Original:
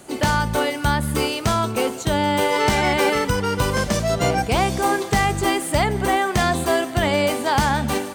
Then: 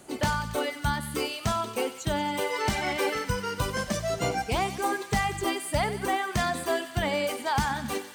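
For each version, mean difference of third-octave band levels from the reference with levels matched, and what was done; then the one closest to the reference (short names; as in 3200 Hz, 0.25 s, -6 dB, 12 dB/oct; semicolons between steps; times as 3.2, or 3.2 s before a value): 3.0 dB: reverb removal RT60 1.8 s; thinning echo 93 ms, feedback 80%, high-pass 890 Hz, level -12 dB; gain -6.5 dB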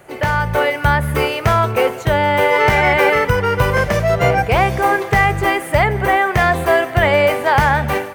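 4.5 dB: graphic EQ 125/250/500/2000/4000/8000 Hz +5/-11/+5/+7/-7/-11 dB; AGC gain up to 6.5 dB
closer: first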